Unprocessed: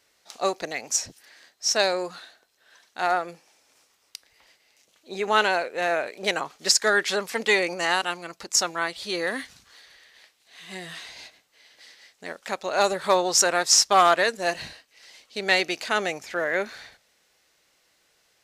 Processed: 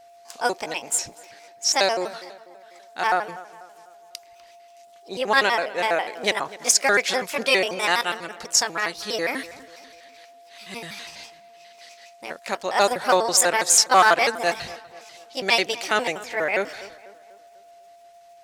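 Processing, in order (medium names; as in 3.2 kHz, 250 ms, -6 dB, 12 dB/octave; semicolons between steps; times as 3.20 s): pitch shift switched off and on +4 st, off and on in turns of 82 ms; whistle 690 Hz -50 dBFS; tape echo 247 ms, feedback 50%, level -16 dB, low-pass 2.1 kHz; trim +2.5 dB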